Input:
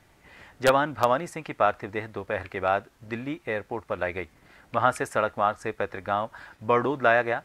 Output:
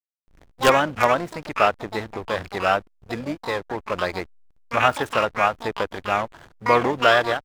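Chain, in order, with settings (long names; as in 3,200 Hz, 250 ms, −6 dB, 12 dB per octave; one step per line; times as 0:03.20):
pitch-shifted copies added −7 semitones −18 dB, +12 semitones −5 dB
slack as between gear wheels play −34.5 dBFS
level +3 dB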